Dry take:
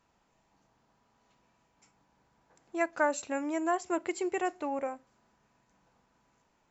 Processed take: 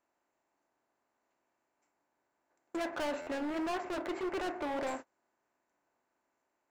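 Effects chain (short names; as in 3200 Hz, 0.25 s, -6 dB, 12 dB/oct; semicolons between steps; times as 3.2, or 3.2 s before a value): per-bin compression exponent 0.6; gate -39 dBFS, range -31 dB; 2.76–4.87 LPF 2100 Hz 12 dB/oct; hard clip -33.5 dBFS, distortion -5 dB; flange 1.6 Hz, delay 2.9 ms, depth 7.1 ms, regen -69%; stuck buffer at 3.21, samples 512, times 4; gain +5 dB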